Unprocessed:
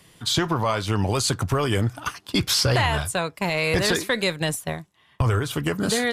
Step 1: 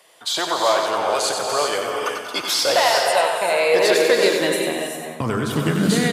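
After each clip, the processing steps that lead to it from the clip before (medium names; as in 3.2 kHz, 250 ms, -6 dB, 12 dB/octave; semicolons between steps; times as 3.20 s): feedback delay 93 ms, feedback 47%, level -6 dB; high-pass sweep 600 Hz -> 150 Hz, 3.26–5.98 s; gated-style reverb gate 420 ms rising, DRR 2.5 dB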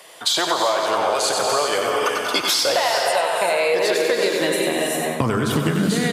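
compression 6:1, threshold -26 dBFS, peak gain reduction 14 dB; trim +9 dB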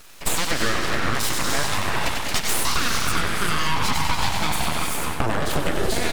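full-wave rectifier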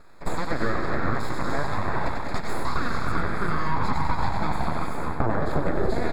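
boxcar filter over 15 samples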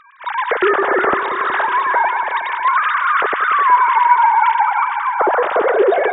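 formants replaced by sine waves; in parallel at -3 dB: peak limiter -13.5 dBFS, peak gain reduction 8 dB; on the sum: multi-head delay 183 ms, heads first and second, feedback 55%, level -13.5 dB; trim +1 dB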